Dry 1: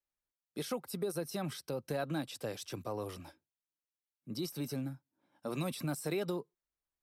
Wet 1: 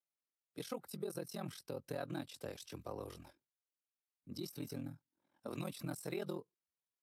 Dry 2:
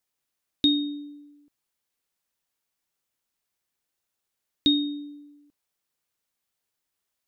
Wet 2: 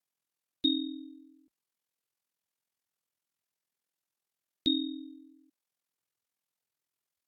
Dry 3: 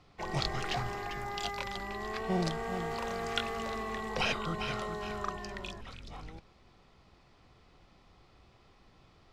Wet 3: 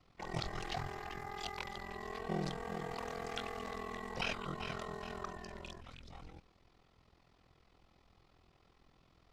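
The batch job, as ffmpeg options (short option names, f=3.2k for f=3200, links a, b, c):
-af "aeval=exprs='val(0)*sin(2*PI*21*n/s)':c=same,volume=-3.5dB" -ar 44100 -c:a libvorbis -b:a 96k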